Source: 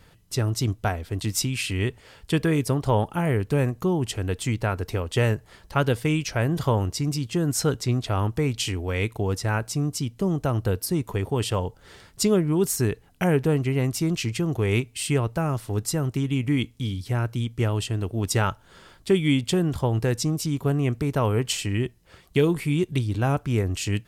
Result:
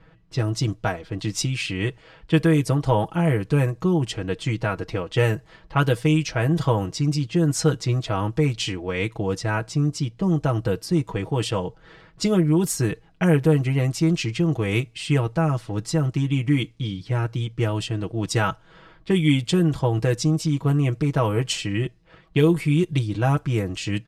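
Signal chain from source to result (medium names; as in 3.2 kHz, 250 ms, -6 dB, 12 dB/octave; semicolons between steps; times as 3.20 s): level-controlled noise filter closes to 2.2 kHz, open at -17 dBFS; comb 6.2 ms, depth 74%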